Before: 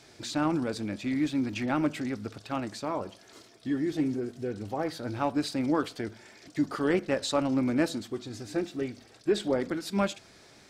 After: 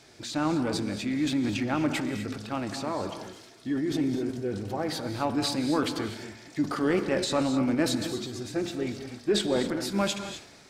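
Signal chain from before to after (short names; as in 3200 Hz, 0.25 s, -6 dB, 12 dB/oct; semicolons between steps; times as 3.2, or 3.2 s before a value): transient shaper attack 0 dB, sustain +8 dB; non-linear reverb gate 0.28 s rising, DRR 8 dB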